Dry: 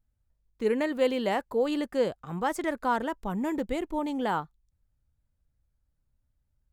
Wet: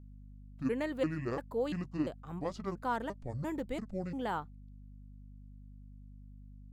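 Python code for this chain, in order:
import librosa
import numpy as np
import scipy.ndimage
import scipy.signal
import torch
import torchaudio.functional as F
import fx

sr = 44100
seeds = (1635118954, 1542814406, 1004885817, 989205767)

y = fx.pitch_trill(x, sr, semitones=-8.5, every_ms=344)
y = fx.add_hum(y, sr, base_hz=50, snr_db=13)
y = F.gain(torch.from_numpy(y), -7.0).numpy()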